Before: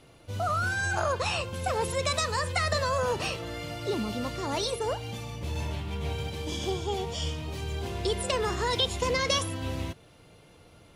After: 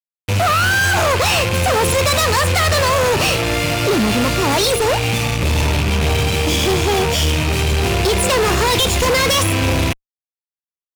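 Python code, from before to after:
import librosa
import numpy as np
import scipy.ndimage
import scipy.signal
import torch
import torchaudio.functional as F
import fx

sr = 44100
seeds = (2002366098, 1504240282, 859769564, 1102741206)

y = fx.rattle_buzz(x, sr, strikes_db=-41.0, level_db=-30.0)
y = fx.fuzz(y, sr, gain_db=38.0, gate_db=-42.0)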